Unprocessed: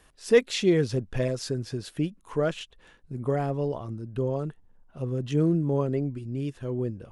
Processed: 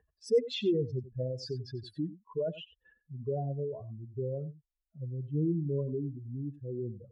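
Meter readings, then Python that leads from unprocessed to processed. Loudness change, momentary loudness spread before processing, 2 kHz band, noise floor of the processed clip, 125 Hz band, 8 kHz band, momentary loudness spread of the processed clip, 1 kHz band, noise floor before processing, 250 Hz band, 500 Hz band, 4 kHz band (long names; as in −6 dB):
−7.0 dB, 12 LU, −17.5 dB, −85 dBFS, −6.0 dB, below −15 dB, 12 LU, −12.0 dB, −59 dBFS, −7.5 dB, −6.5 dB, −6.5 dB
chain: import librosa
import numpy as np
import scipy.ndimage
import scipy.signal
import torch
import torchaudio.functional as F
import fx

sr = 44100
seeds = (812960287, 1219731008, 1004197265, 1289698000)

p1 = fx.spec_expand(x, sr, power=3.0)
p2 = scipy.signal.sosfilt(scipy.signal.butter(2, 83.0, 'highpass', fs=sr, output='sos'), p1)
p3 = fx.dynamic_eq(p2, sr, hz=1000.0, q=1.5, threshold_db=-44.0, ratio=4.0, max_db=-3)
p4 = p3 + fx.echo_single(p3, sr, ms=92, db=-16.0, dry=0)
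y = F.gain(torch.from_numpy(p4), -6.0).numpy()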